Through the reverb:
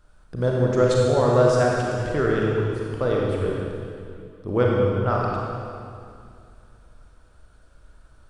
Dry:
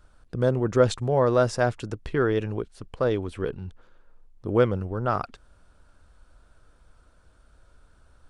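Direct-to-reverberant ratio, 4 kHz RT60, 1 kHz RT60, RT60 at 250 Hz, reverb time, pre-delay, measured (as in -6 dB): -3.0 dB, 2.2 s, 2.3 s, 2.7 s, 2.4 s, 29 ms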